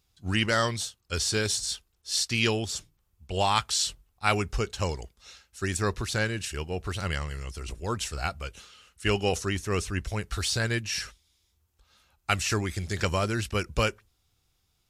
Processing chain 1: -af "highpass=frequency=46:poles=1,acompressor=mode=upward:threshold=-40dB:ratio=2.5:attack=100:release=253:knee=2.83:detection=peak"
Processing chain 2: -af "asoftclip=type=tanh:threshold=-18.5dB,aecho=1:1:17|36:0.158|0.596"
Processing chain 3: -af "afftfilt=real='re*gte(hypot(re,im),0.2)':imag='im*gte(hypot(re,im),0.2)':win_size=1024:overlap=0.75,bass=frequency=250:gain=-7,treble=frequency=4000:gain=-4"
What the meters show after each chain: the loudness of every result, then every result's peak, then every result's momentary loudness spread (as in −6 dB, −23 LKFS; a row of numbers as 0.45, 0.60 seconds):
−29.0, −29.0, −35.0 LKFS; −6.5, −14.5, −13.5 dBFS; 12, 12, 16 LU